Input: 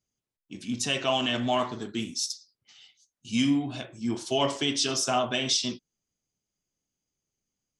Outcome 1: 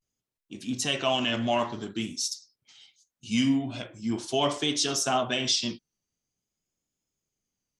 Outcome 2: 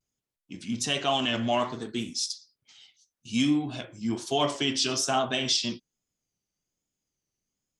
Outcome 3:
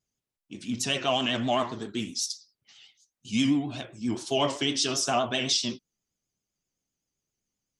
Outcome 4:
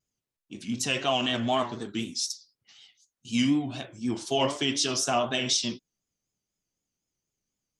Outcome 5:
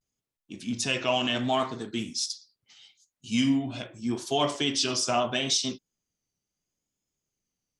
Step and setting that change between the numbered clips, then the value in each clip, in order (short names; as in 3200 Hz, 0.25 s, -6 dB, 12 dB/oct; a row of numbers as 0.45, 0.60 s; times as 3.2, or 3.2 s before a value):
vibrato, rate: 0.47, 1.2, 7.7, 4, 0.75 Hz